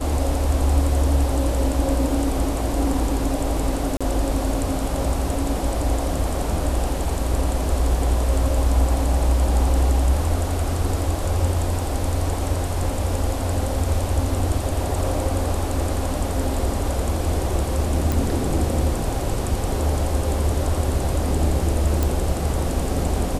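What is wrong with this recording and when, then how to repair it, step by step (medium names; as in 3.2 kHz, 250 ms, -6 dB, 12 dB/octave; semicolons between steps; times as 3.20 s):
3.97–4.01 s: dropout 36 ms
18.12 s: pop
22.03 s: pop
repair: de-click; interpolate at 3.97 s, 36 ms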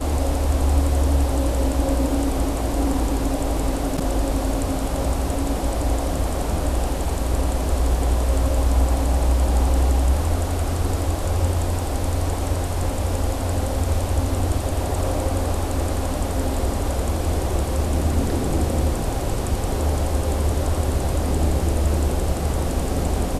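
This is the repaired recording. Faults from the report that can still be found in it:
nothing left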